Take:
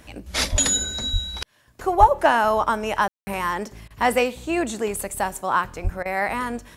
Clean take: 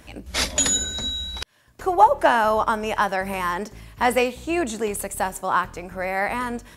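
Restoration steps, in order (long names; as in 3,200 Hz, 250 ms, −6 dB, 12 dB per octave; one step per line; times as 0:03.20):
high-pass at the plosives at 0:00.51/0:01.12/0:01.99/0:05.83
ambience match 0:03.08–0:03.27
repair the gap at 0:03.88/0:06.03, 23 ms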